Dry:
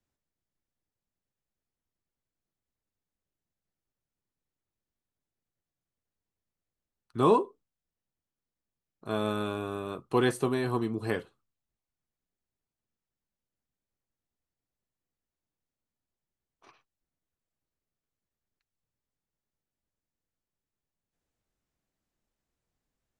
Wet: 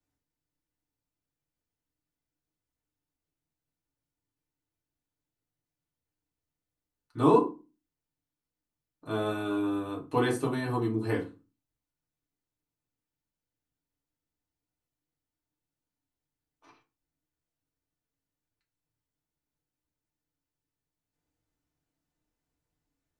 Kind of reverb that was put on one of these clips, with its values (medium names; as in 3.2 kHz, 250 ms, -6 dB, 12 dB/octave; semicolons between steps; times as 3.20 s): FDN reverb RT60 0.3 s, low-frequency decay 1.45×, high-frequency decay 0.7×, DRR -2.5 dB; trim -5 dB